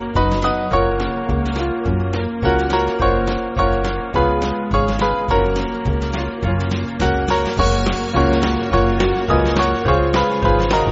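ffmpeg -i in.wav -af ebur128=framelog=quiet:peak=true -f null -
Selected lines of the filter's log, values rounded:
Integrated loudness:
  I:         -18.2 LUFS
  Threshold: -28.2 LUFS
Loudness range:
  LRA:         2.4 LU
  Threshold: -38.4 LUFS
  LRA low:   -19.3 LUFS
  LRA high:  -16.9 LUFS
True peak:
  Peak:       -1.8 dBFS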